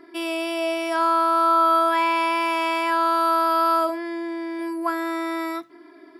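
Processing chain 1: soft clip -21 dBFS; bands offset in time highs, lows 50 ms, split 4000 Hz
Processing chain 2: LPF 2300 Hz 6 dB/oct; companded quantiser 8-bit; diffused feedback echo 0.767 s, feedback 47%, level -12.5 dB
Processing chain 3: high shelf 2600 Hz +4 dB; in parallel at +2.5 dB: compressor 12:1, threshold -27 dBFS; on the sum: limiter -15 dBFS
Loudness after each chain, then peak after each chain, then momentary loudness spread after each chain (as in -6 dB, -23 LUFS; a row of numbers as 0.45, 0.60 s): -26.0, -22.5, -23.0 LUFS; -19.5, -10.0, -15.0 dBFS; 7, 10, 2 LU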